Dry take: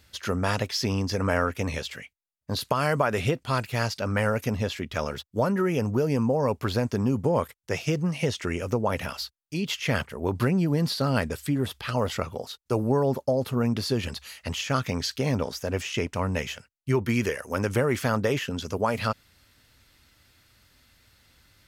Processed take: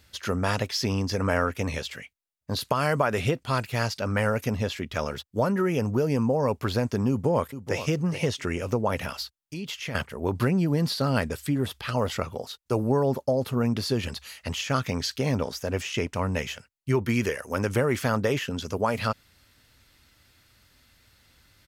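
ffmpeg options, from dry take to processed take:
ffmpeg -i in.wav -filter_complex "[0:a]asplit=2[link_01][link_02];[link_02]afade=type=in:start_time=7.09:duration=0.01,afade=type=out:start_time=7.85:duration=0.01,aecho=0:1:430|860|1290:0.266073|0.0798218|0.0239465[link_03];[link_01][link_03]amix=inputs=2:normalize=0,asettb=1/sr,asplit=3[link_04][link_05][link_06];[link_04]atrim=end=9.224[link_07];[link_05]atrim=start=9.22:end=9.95,asetpts=PTS-STARTPTS,afade=type=in:duration=0.004:curve=qsin,afade=type=out:start_time=0.726:duration=0.004:curve=qsin,acompressor=threshold=-32dB:ratio=3:attack=3.2:release=140:knee=1:detection=peak[link_08];[link_06]atrim=start=9.946[link_09];[link_07][link_08]acrossfade=duration=0.004:curve1=hsin:curve2=qsin[link_10];[link_10][link_09]acrossfade=duration=0.004:curve1=qsin:curve2=hsin" out.wav

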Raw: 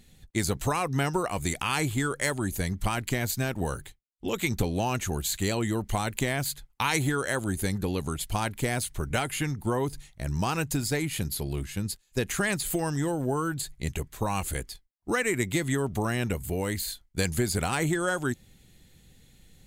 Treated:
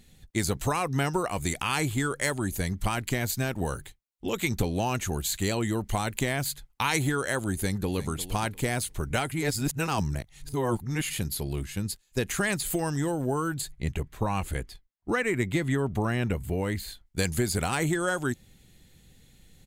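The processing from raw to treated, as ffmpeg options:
ffmpeg -i in.wav -filter_complex "[0:a]asplit=2[link_01][link_02];[link_02]afade=type=in:start_time=7.54:duration=0.01,afade=type=out:start_time=8.11:duration=0.01,aecho=0:1:350|700|1050:0.199526|0.0498816|0.0124704[link_03];[link_01][link_03]amix=inputs=2:normalize=0,asettb=1/sr,asplit=3[link_04][link_05][link_06];[link_04]atrim=end=13.724[link_07];[link_05]atrim=start=13.72:end=17.06,asetpts=PTS-STARTPTS,afade=type=in:duration=0.004:curve=qsin,afade=type=out:start_time=3.336:duration=0.004:curve=qsin,bass=frequency=250:gain=2,treble=frequency=4000:gain=-9[link_08];[link_06]atrim=start=17.056[link_09];[link_07][link_08]acrossfade=duration=0.004:curve1=hsin:curve2=qsin[link_10];[link_10][link_09]acrossfade=duration=0.004:curve1=qsin:curve2=hsin,asplit=3[link_11][link_12][link_13];[link_11]atrim=end=9.322[link_14];[link_12]atrim=start=9.318:end=11.102,asetpts=PTS-STARTPTS,areverse[link_15];[link_13]atrim=start=11.098[link_16];[link_14][link_15]acrossfade=duration=0.004:curve1=hsin:curve2=hsin[link_17];[link_17][link_16]acrossfade=duration=0.004:curve1=hsin:curve2=hsin" out.wav

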